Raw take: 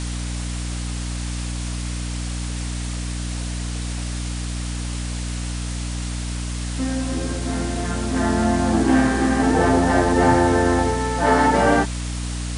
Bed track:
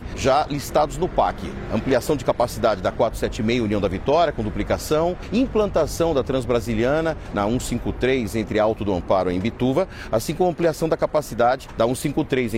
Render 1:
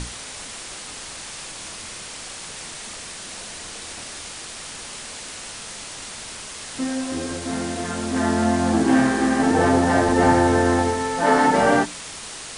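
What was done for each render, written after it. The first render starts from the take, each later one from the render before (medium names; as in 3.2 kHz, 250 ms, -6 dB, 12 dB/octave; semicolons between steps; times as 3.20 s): hum notches 60/120/180/240/300/360 Hz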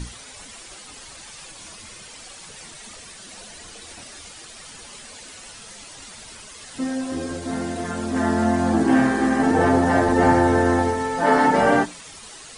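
noise reduction 10 dB, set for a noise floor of -36 dBFS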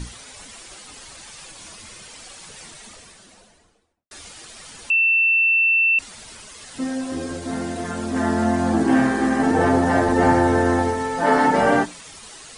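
2.63–4.11 s: studio fade out; 4.90–5.99 s: bleep 2.68 kHz -14 dBFS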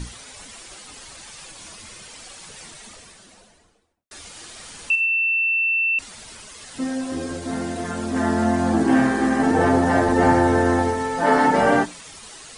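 4.28–5.99 s: flutter echo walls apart 8.8 m, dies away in 0.49 s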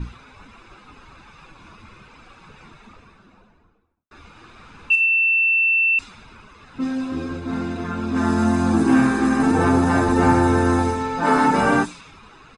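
level-controlled noise filter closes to 1.6 kHz, open at -14 dBFS; comb 0.8 ms, depth 53%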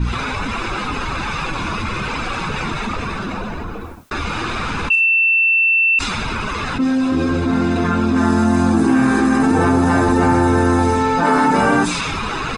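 level flattener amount 70%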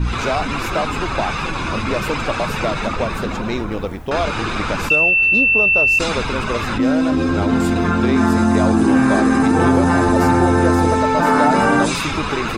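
add bed track -3.5 dB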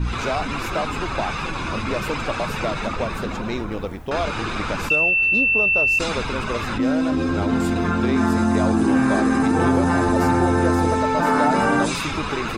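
trim -4 dB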